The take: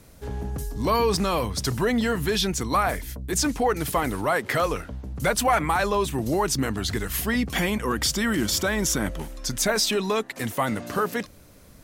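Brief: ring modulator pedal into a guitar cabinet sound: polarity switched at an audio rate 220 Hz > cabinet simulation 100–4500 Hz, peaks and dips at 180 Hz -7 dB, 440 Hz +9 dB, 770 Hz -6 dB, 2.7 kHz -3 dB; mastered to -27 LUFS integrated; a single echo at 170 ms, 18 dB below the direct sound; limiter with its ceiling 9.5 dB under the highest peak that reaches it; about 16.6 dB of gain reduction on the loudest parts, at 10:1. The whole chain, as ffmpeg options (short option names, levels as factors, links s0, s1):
-af "acompressor=threshold=0.0178:ratio=10,alimiter=level_in=2.24:limit=0.0631:level=0:latency=1,volume=0.447,aecho=1:1:170:0.126,aeval=exprs='val(0)*sgn(sin(2*PI*220*n/s))':c=same,highpass=100,equalizer=f=180:t=q:w=4:g=-7,equalizer=f=440:t=q:w=4:g=9,equalizer=f=770:t=q:w=4:g=-6,equalizer=f=2700:t=q:w=4:g=-3,lowpass=f=4500:w=0.5412,lowpass=f=4500:w=1.3066,volume=4.47"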